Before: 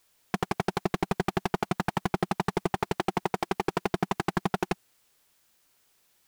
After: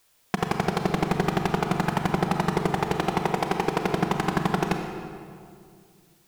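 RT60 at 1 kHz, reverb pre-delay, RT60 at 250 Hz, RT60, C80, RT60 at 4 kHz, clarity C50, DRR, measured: 2.1 s, 29 ms, 2.7 s, 2.3 s, 6.0 dB, 1.5 s, 4.5 dB, 4.0 dB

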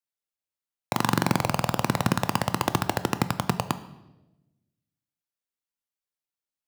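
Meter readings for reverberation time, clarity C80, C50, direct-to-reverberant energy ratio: 1.0 s, 17.0 dB, 14.5 dB, 11.0 dB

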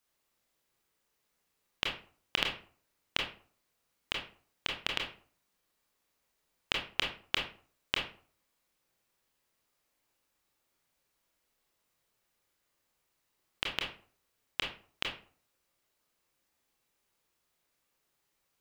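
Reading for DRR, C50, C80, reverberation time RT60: -0.5 dB, 5.5 dB, 12.0 dB, 0.45 s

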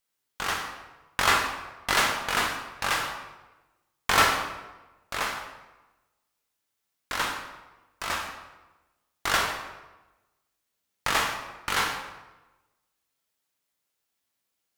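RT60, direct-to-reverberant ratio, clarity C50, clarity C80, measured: 1.1 s, 2.0 dB, 6.0 dB, 7.5 dB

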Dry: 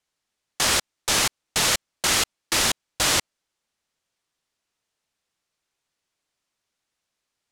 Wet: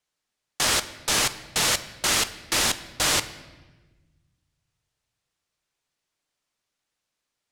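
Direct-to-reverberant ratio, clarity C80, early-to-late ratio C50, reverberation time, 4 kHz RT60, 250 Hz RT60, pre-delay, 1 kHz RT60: 11.0 dB, 16.5 dB, 14.5 dB, 1.3 s, 1.0 s, 1.9 s, 7 ms, 1.1 s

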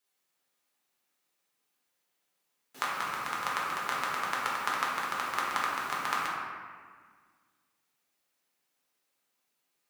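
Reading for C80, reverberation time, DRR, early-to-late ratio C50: 1.5 dB, 1.7 s, -5.5 dB, -0.5 dB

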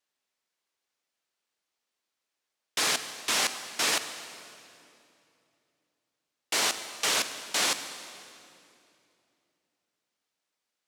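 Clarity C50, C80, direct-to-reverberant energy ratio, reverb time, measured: 10.0 dB, 11.0 dB, 9.5 dB, 2.7 s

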